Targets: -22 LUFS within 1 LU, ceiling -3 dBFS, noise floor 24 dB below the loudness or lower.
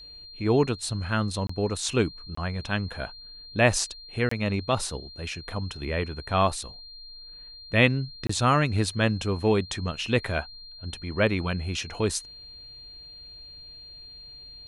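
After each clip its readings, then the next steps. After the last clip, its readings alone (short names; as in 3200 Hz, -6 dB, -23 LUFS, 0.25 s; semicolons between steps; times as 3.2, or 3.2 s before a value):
dropouts 4; longest dropout 24 ms; steady tone 4200 Hz; tone level -43 dBFS; loudness -27.0 LUFS; peak -5.5 dBFS; loudness target -22.0 LUFS
-> interpolate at 1.47/2.35/4.29/8.27, 24 ms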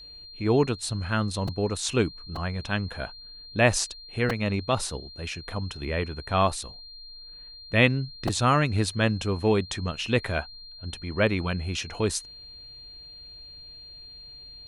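dropouts 0; steady tone 4200 Hz; tone level -43 dBFS
-> notch 4200 Hz, Q 30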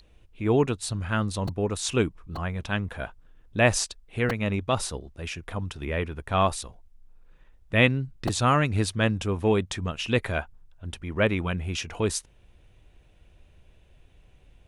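steady tone none; loudness -27.0 LUFS; peak -5.5 dBFS; loudness target -22.0 LUFS
-> gain +5 dB; limiter -3 dBFS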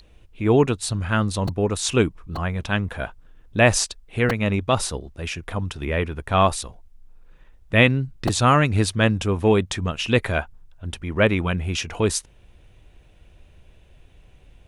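loudness -22.0 LUFS; peak -3.0 dBFS; noise floor -53 dBFS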